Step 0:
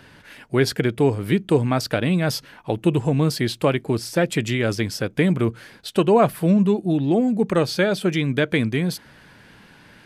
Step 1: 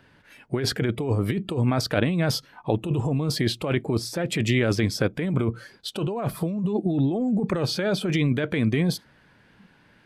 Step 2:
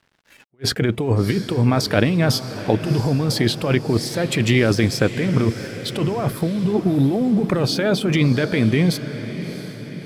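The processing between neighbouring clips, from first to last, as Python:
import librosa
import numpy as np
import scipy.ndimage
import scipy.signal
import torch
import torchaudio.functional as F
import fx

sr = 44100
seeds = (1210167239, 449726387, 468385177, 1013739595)

y1 = fx.noise_reduce_blind(x, sr, reduce_db=12)
y1 = fx.high_shelf(y1, sr, hz=4900.0, db=-8.0)
y1 = fx.over_compress(y1, sr, threshold_db=-23.0, ratio=-1.0)
y2 = np.sign(y1) * np.maximum(np.abs(y1) - 10.0 ** (-53.0 / 20.0), 0.0)
y2 = fx.echo_diffused(y2, sr, ms=676, feedback_pct=54, wet_db=-12.0)
y2 = fx.attack_slew(y2, sr, db_per_s=570.0)
y2 = y2 * 10.0 ** (5.5 / 20.0)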